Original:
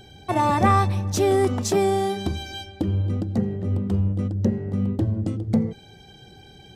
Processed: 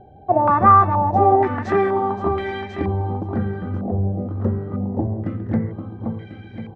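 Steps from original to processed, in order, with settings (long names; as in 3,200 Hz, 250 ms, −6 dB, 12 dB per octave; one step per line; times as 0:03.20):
repeating echo 522 ms, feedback 50%, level −6 dB
low-pass on a step sequencer 2.1 Hz 700–2,000 Hz
level −1 dB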